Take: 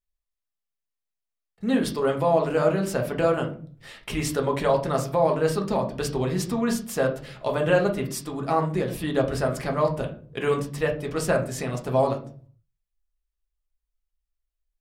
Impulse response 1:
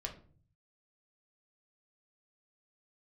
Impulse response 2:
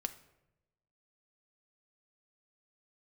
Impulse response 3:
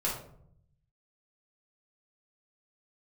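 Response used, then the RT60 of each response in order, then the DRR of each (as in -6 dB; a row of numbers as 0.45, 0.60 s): 1; 0.45, 0.95, 0.65 s; 1.5, 7.5, -5.0 dB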